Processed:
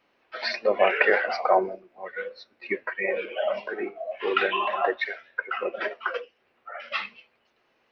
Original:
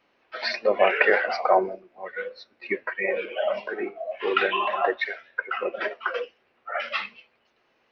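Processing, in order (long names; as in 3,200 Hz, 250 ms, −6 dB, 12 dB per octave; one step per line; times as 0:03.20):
0:06.17–0:06.92: downward compressor 2.5 to 1, threshold −39 dBFS, peak gain reduction 10 dB
level −1 dB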